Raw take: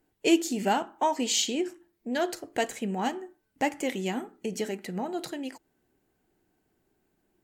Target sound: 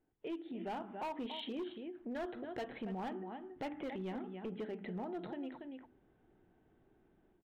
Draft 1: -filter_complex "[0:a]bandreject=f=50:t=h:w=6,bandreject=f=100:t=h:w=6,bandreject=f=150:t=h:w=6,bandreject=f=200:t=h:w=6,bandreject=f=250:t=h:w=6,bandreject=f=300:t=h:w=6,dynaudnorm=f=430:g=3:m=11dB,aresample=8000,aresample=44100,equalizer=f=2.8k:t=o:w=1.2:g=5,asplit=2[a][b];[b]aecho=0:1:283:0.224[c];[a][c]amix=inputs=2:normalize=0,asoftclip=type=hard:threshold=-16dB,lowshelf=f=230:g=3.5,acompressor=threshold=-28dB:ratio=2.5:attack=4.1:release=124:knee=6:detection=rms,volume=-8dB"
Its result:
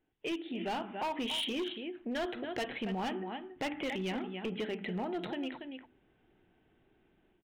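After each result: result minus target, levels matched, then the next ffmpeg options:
compressor: peak gain reduction -5.5 dB; 2000 Hz band +4.5 dB
-filter_complex "[0:a]bandreject=f=50:t=h:w=6,bandreject=f=100:t=h:w=6,bandreject=f=150:t=h:w=6,bandreject=f=200:t=h:w=6,bandreject=f=250:t=h:w=6,bandreject=f=300:t=h:w=6,dynaudnorm=f=430:g=3:m=11dB,aresample=8000,aresample=44100,equalizer=f=2.8k:t=o:w=1.2:g=5,asplit=2[a][b];[b]aecho=0:1:283:0.224[c];[a][c]amix=inputs=2:normalize=0,asoftclip=type=hard:threshold=-16dB,lowshelf=f=230:g=3.5,acompressor=threshold=-37dB:ratio=2.5:attack=4.1:release=124:knee=6:detection=rms,volume=-8dB"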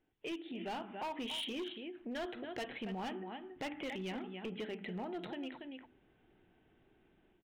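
2000 Hz band +4.5 dB
-filter_complex "[0:a]bandreject=f=50:t=h:w=6,bandreject=f=100:t=h:w=6,bandreject=f=150:t=h:w=6,bandreject=f=200:t=h:w=6,bandreject=f=250:t=h:w=6,bandreject=f=300:t=h:w=6,dynaudnorm=f=430:g=3:m=11dB,aresample=8000,aresample=44100,equalizer=f=2.8k:t=o:w=1.2:g=-7,asplit=2[a][b];[b]aecho=0:1:283:0.224[c];[a][c]amix=inputs=2:normalize=0,asoftclip=type=hard:threshold=-16dB,lowshelf=f=230:g=3.5,acompressor=threshold=-37dB:ratio=2.5:attack=4.1:release=124:knee=6:detection=rms,volume=-8dB"

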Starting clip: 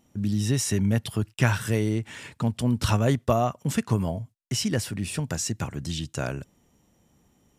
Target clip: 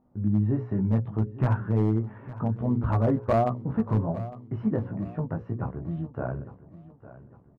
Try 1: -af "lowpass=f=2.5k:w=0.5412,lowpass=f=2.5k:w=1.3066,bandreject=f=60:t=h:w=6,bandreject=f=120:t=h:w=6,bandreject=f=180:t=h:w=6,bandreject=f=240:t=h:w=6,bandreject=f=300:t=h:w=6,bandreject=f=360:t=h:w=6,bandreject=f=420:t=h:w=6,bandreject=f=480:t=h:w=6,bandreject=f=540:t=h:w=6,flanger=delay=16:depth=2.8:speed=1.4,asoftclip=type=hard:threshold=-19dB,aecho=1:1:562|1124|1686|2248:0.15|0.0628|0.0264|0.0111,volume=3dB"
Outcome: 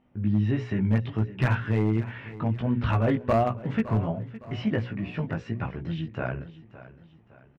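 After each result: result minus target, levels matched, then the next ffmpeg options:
2000 Hz band +9.5 dB; echo 0.295 s early
-af "lowpass=f=1.2k:w=0.5412,lowpass=f=1.2k:w=1.3066,bandreject=f=60:t=h:w=6,bandreject=f=120:t=h:w=6,bandreject=f=180:t=h:w=6,bandreject=f=240:t=h:w=6,bandreject=f=300:t=h:w=6,bandreject=f=360:t=h:w=6,bandreject=f=420:t=h:w=6,bandreject=f=480:t=h:w=6,bandreject=f=540:t=h:w=6,flanger=delay=16:depth=2.8:speed=1.4,asoftclip=type=hard:threshold=-19dB,aecho=1:1:562|1124|1686|2248:0.15|0.0628|0.0264|0.0111,volume=3dB"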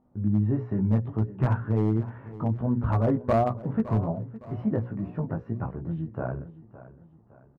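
echo 0.295 s early
-af "lowpass=f=1.2k:w=0.5412,lowpass=f=1.2k:w=1.3066,bandreject=f=60:t=h:w=6,bandreject=f=120:t=h:w=6,bandreject=f=180:t=h:w=6,bandreject=f=240:t=h:w=6,bandreject=f=300:t=h:w=6,bandreject=f=360:t=h:w=6,bandreject=f=420:t=h:w=6,bandreject=f=480:t=h:w=6,bandreject=f=540:t=h:w=6,flanger=delay=16:depth=2.8:speed=1.4,asoftclip=type=hard:threshold=-19dB,aecho=1:1:857|1714|2571|3428:0.15|0.0628|0.0264|0.0111,volume=3dB"

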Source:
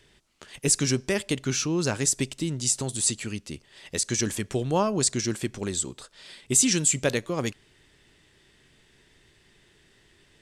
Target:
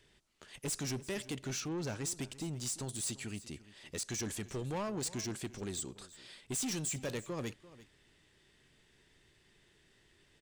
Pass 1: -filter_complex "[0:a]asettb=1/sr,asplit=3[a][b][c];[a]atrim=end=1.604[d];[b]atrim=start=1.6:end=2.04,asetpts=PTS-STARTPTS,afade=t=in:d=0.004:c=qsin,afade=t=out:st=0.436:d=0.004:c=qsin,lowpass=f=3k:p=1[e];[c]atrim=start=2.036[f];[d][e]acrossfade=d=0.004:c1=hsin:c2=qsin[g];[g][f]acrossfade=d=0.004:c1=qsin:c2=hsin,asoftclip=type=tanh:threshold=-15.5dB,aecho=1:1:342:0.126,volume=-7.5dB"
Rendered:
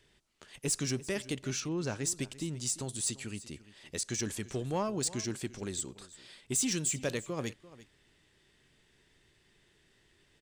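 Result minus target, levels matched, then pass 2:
soft clip: distortion -10 dB
-filter_complex "[0:a]asettb=1/sr,asplit=3[a][b][c];[a]atrim=end=1.604[d];[b]atrim=start=1.6:end=2.04,asetpts=PTS-STARTPTS,afade=t=in:d=0.004:c=qsin,afade=t=out:st=0.436:d=0.004:c=qsin,lowpass=f=3k:p=1[e];[c]atrim=start=2.036[f];[d][e]acrossfade=d=0.004:c1=hsin:c2=qsin[g];[g][f]acrossfade=d=0.004:c1=qsin:c2=hsin,asoftclip=type=tanh:threshold=-26dB,aecho=1:1:342:0.126,volume=-7.5dB"

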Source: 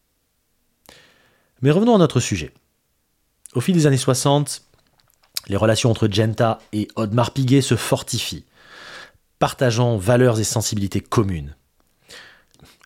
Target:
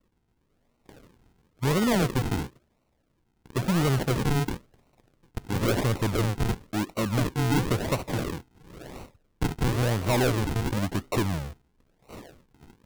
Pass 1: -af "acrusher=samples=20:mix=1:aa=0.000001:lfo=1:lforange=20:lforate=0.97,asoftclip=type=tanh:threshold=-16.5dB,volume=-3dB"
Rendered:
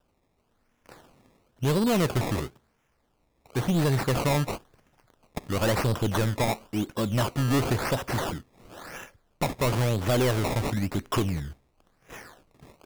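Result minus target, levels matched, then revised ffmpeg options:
decimation with a swept rate: distortion -7 dB
-af "acrusher=samples=52:mix=1:aa=0.000001:lfo=1:lforange=52:lforate=0.97,asoftclip=type=tanh:threshold=-16.5dB,volume=-3dB"

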